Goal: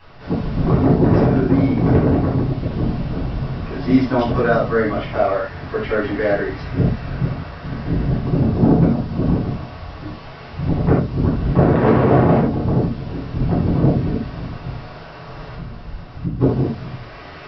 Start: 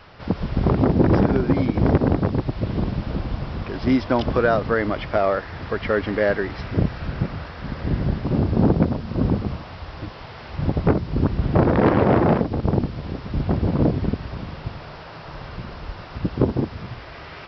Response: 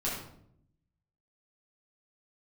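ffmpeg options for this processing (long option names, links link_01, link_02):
-filter_complex "[0:a]asettb=1/sr,asplit=3[link_01][link_02][link_03];[link_01]atrim=end=15.544[link_04];[link_02]atrim=start=15.54:end=16.4,asetpts=PTS-STARTPTS,afade=type=in:duration=0.004:curve=qsin,afade=type=out:start_time=0.856:duration=0.004:curve=qsin,acrossover=split=260[link_05][link_06];[link_06]acompressor=threshold=-43dB:ratio=4[link_07];[link_05][link_07]amix=inputs=2:normalize=0[link_08];[link_03]atrim=start=16.396[link_09];[link_04][link_08]acrossfade=duration=0.004:curve1=hsin:curve2=qsin[link_10];[link_10][link_09]acrossfade=duration=0.004:curve1=qsin:curve2=hsin[link_11];[1:a]atrim=start_sample=2205,atrim=end_sample=4410[link_12];[link_11][link_12]afir=irnorm=-1:irlink=0,volume=-4dB"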